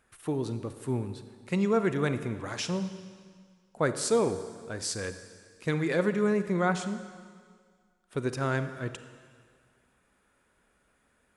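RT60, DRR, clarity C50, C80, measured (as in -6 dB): 1.9 s, 10.0 dB, 10.5 dB, 12.0 dB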